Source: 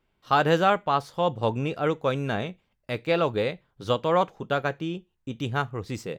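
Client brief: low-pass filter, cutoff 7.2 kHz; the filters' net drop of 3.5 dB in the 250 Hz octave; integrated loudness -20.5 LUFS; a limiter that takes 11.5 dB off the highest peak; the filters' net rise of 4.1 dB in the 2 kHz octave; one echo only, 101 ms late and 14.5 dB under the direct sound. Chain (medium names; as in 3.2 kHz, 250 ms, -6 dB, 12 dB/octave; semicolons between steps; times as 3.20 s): low-pass 7.2 kHz; peaking EQ 250 Hz -5.5 dB; peaking EQ 2 kHz +6 dB; peak limiter -18 dBFS; delay 101 ms -14.5 dB; trim +10 dB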